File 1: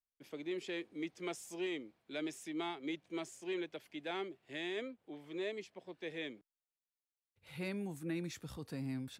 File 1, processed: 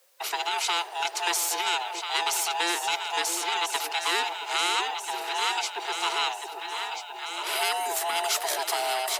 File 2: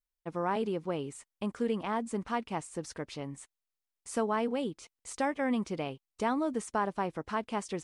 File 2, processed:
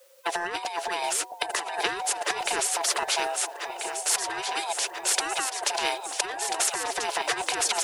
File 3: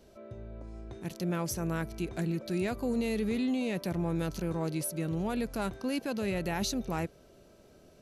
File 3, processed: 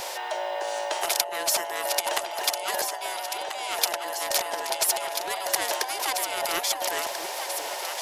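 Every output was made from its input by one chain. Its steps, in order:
neighbouring bands swapped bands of 500 Hz
Butterworth high-pass 360 Hz 72 dB per octave
compressor whose output falls as the input rises −38 dBFS, ratio −0.5
delay that swaps between a low-pass and a high-pass 669 ms, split 810 Hz, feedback 73%, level −11 dB
every bin compressed towards the loudest bin 2 to 1
loudness normalisation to −27 LKFS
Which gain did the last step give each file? +16.5, +16.5, +17.5 decibels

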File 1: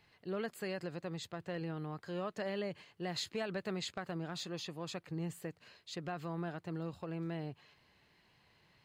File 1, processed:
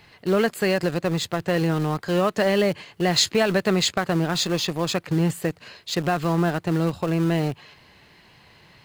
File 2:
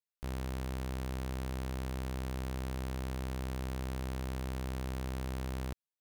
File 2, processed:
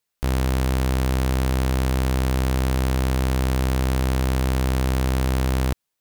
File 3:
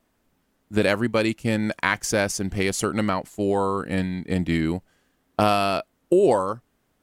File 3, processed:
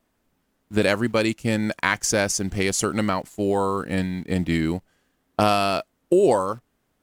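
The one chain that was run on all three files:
dynamic equaliser 6,500 Hz, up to +5 dB, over −46 dBFS, Q 1.3
in parallel at −11.5 dB: bit reduction 7 bits
on the sum: loudness normalisation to −23 LKFS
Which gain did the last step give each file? +16.0, +14.5, −1.5 decibels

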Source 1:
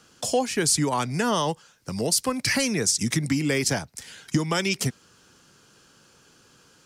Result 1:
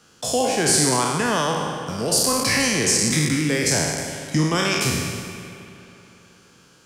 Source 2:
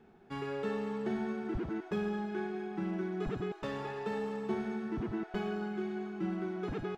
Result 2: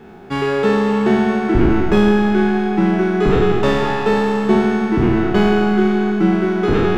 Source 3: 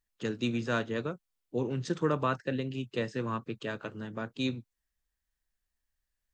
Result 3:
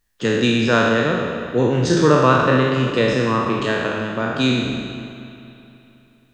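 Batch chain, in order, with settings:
peak hold with a decay on every bin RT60 1.55 s
spring reverb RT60 3.2 s, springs 39/53 ms, chirp 75 ms, DRR 8.5 dB
normalise the peak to −2 dBFS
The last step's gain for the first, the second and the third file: −1.0, +18.0, +12.0 decibels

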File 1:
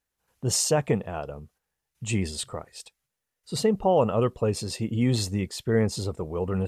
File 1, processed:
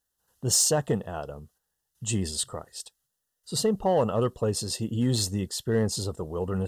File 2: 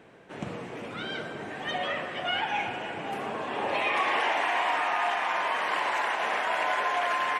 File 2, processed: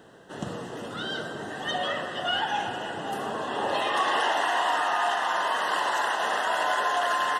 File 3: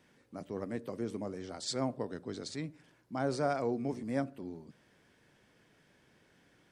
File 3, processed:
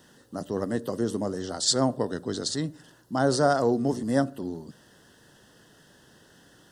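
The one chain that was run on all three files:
high-shelf EQ 4,400 Hz +8 dB
in parallel at −10 dB: wave folding −17 dBFS
on the sum: Butterworth band-reject 2,300 Hz, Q 2.8
loudness normalisation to −27 LKFS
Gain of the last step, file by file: −4.0, −0.5, +7.0 decibels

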